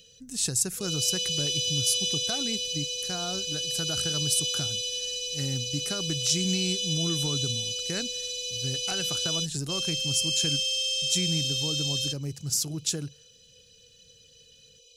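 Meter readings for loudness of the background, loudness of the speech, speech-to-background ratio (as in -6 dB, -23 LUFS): -27.5 LUFS, -31.0 LUFS, -3.5 dB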